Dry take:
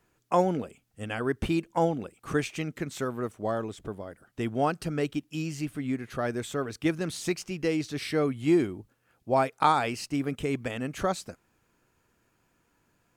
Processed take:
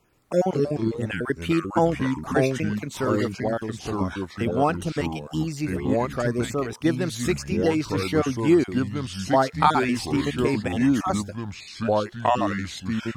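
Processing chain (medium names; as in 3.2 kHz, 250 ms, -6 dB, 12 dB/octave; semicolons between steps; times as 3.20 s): random holes in the spectrogram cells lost 26%; ever faster or slower copies 127 ms, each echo -4 st, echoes 2; trim +4.5 dB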